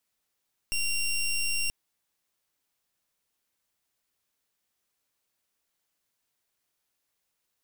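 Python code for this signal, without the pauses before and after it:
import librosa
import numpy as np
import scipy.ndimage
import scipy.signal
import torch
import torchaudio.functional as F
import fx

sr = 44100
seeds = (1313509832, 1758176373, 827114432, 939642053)

y = fx.pulse(sr, length_s=0.98, hz=2760.0, level_db=-27.5, duty_pct=16)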